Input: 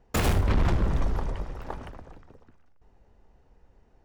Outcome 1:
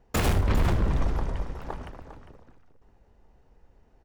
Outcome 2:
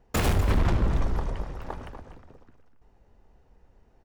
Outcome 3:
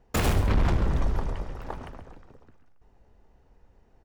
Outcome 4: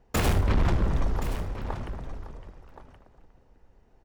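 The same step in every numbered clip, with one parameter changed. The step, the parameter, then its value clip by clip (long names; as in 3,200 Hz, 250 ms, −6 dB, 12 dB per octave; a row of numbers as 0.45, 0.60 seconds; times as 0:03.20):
single-tap delay, delay time: 402, 246, 135, 1,073 milliseconds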